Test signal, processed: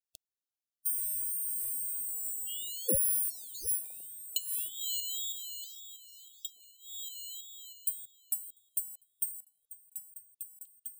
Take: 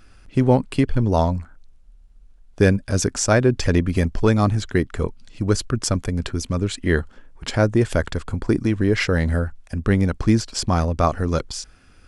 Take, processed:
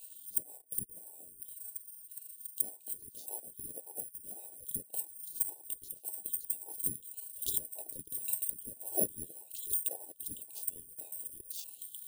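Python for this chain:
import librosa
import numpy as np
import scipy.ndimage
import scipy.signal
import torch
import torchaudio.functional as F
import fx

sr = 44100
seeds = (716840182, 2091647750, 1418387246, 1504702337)

p1 = fx.band_swap(x, sr, width_hz=2000)
p2 = 10.0 ** (-10.0 / 20.0) * (np.abs((p1 / 10.0 ** (-10.0 / 20.0) + 3.0) % 4.0 - 2.0) - 1.0)
p3 = fx.low_shelf(p2, sr, hz=430.0, db=2.0)
p4 = fx.quant_float(p3, sr, bits=2)
p5 = fx.env_lowpass_down(p4, sr, base_hz=390.0, full_db=-17.0)
p6 = p5 + fx.echo_stepped(p5, sr, ms=695, hz=490.0, octaves=1.4, feedback_pct=70, wet_db=-1, dry=0)
p7 = (np.kron(p6[::4], np.eye(4)[0]) * 4)[:len(p6)]
p8 = fx.brickwall_bandstop(p7, sr, low_hz=300.0, high_hz=3000.0)
p9 = fx.ring_lfo(p8, sr, carrier_hz=400.0, swing_pct=60, hz=1.8)
y = p9 * 10.0 ** (-6.5 / 20.0)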